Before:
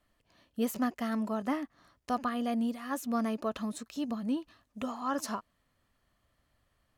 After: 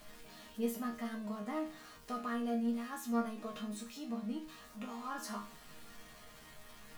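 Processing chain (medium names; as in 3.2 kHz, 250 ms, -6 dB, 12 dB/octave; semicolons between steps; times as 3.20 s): jump at every zero crossing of -40.5 dBFS; chord resonator D#3 sus4, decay 0.35 s; trim +8 dB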